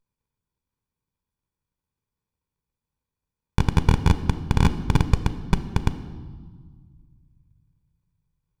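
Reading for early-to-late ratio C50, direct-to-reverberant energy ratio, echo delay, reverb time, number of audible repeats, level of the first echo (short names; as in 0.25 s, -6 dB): 13.0 dB, 10.5 dB, none, 1.6 s, none, none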